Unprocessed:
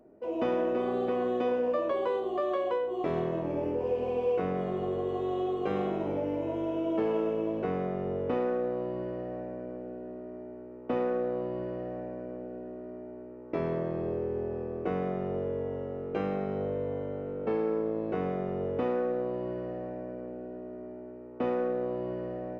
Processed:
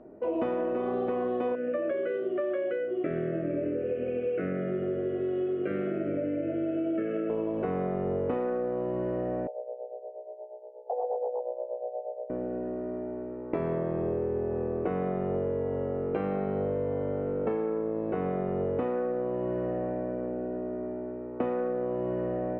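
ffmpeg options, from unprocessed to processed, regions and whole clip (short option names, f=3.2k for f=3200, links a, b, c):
-filter_complex "[0:a]asettb=1/sr,asplit=3[a][b][c];[a]atrim=end=1.554[d];[b]atrim=start=1.55:end=7.3,asetpts=PTS-STARTPTS,afade=t=in:d=0.004:c=qsin,afade=t=out:st=5.746:d=0.004:c=qsin,asuperstop=centerf=920:order=8:qfactor=1.3,highpass=140,equalizer=f=210:t=q:w=4:g=-5,equalizer=f=460:t=q:w=4:g=-9,equalizer=f=1.1k:t=q:w=4:g=4,lowpass=f=2.7k:w=0.5412,lowpass=f=2.7k:w=1.3066[e];[c]atrim=start=7.296[f];[d][e]acrossfade=d=0.004:c1=hsin:c2=qsin[g];[g][f]acrossfade=d=0.004:c1=qsin:c2=hsin,asettb=1/sr,asplit=3[h][i][j];[h]atrim=end=9.474[k];[i]atrim=start=9.47:end=12.3,asetpts=PTS-STARTPTS,afade=t=in:d=0.004:c=qsin,afade=t=out:st=2.826:d=0.004:c=qsin,tremolo=f=8.4:d=0.7,aeval=exprs='(mod(17.8*val(0)+1,2)-1)/17.8':c=same,asuperpass=centerf=620:order=12:qfactor=1.4[l];[j]atrim=start=12.296[m];[k][l]acrossfade=d=0.004:c1=hsin:c2=qsin[n];[n][m]acrossfade=d=0.004:c1=qsin:c2=hsin,acompressor=threshold=-34dB:ratio=6,lowpass=2.3k,volume=7.5dB"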